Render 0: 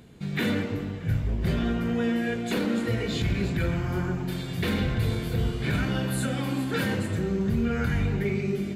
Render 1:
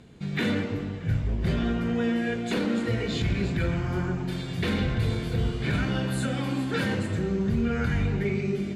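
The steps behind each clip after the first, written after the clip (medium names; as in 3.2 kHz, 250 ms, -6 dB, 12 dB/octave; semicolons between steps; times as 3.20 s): low-pass 8.4 kHz 12 dB/octave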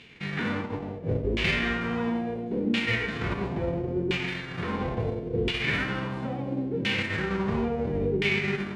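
formants flattened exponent 0.3; LFO low-pass saw down 0.73 Hz 370–2800 Hz; high-order bell 980 Hz -8.5 dB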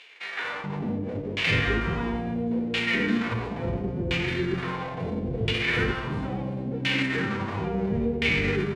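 bands offset in time highs, lows 430 ms, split 500 Hz; trim +2 dB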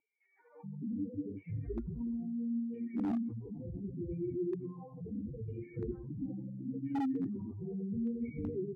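spectral contrast enhancement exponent 3.3; cascade formant filter u; wavefolder -28 dBFS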